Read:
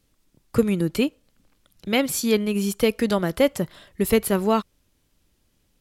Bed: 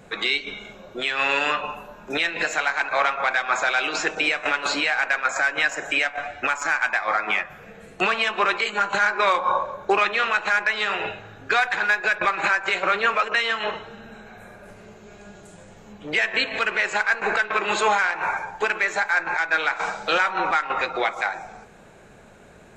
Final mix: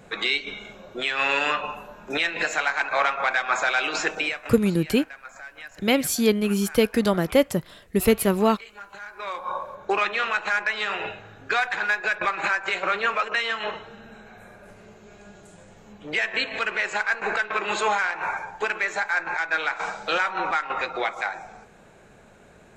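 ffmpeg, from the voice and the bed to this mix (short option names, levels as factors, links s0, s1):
-filter_complex "[0:a]adelay=3950,volume=1.06[s0];[1:a]volume=5.96,afade=t=out:st=4.1:d=0.43:silence=0.11885,afade=t=in:st=9.1:d=0.92:silence=0.149624[s1];[s0][s1]amix=inputs=2:normalize=0"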